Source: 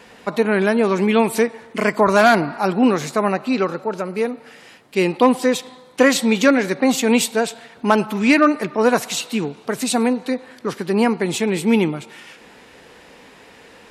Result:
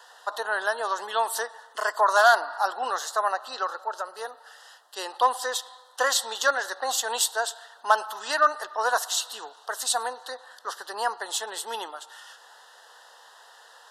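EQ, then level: HPF 720 Hz 24 dB/oct; Butterworth band-stop 2300 Hz, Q 1.6; bell 1800 Hz +2.5 dB 0.25 oct; -1.5 dB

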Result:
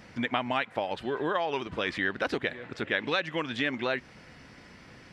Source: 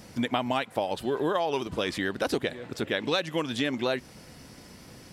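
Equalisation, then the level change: tape spacing loss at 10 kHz 24 dB; bell 1900 Hz +10.5 dB 1.7 oct; high shelf 4500 Hz +11 dB; -3.5 dB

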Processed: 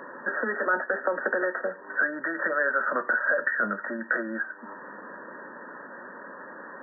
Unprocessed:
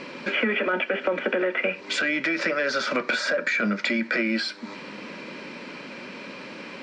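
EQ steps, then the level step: HPF 1200 Hz 6 dB/oct; brick-wall FIR low-pass 1900 Hz; +5.0 dB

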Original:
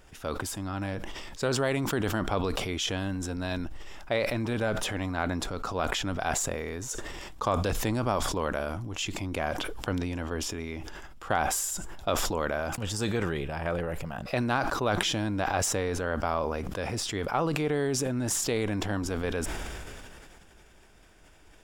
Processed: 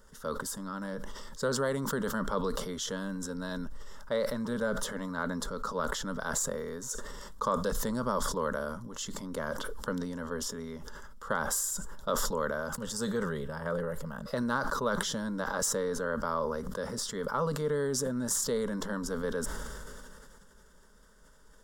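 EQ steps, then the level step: fixed phaser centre 490 Hz, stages 8; 0.0 dB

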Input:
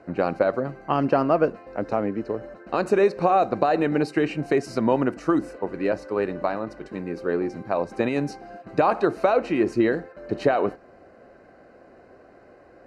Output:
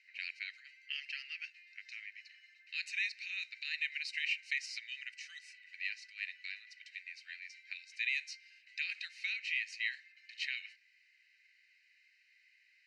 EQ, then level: steep high-pass 2000 Hz 72 dB/oct; air absorption 120 m; +4.5 dB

